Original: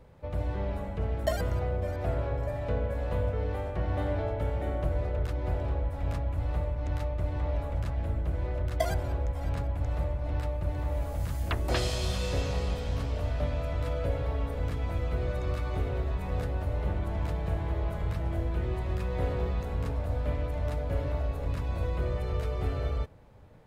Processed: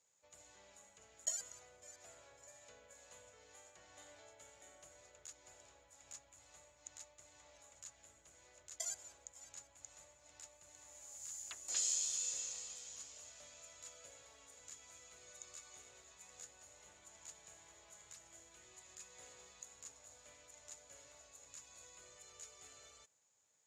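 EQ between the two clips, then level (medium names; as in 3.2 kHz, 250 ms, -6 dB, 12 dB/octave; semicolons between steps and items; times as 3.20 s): band-pass filter 6.9 kHz, Q 17; +17.5 dB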